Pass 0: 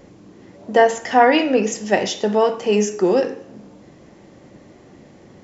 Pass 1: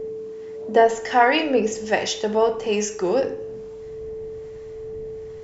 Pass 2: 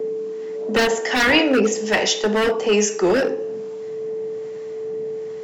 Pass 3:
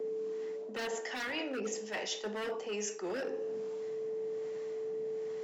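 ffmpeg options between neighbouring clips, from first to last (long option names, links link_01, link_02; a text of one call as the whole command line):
ffmpeg -i in.wav -filter_complex "[0:a]aeval=exprs='val(0)+0.0447*sin(2*PI*440*n/s)':channel_layout=same,acrossover=split=790[link_01][link_02];[link_01]aeval=exprs='val(0)*(1-0.5/2+0.5/2*cos(2*PI*1.2*n/s))':channel_layout=same[link_03];[link_02]aeval=exprs='val(0)*(1-0.5/2-0.5/2*cos(2*PI*1.2*n/s))':channel_layout=same[link_04];[link_03][link_04]amix=inputs=2:normalize=0,asubboost=boost=11:cutoff=75" out.wav
ffmpeg -i in.wav -filter_complex "[0:a]highpass=frequency=170:width=0.5412,highpass=frequency=170:width=1.3066,acrossover=split=380|1400[link_01][link_02][link_03];[link_02]aeval=exprs='0.0708*(abs(mod(val(0)/0.0708+3,4)-2)-1)':channel_layout=same[link_04];[link_01][link_04][link_03]amix=inputs=3:normalize=0,volume=6dB" out.wav
ffmpeg -i in.wav -af "lowshelf=frequency=140:gain=-11.5,areverse,acompressor=threshold=-29dB:ratio=6,areverse,volume=-6.5dB" out.wav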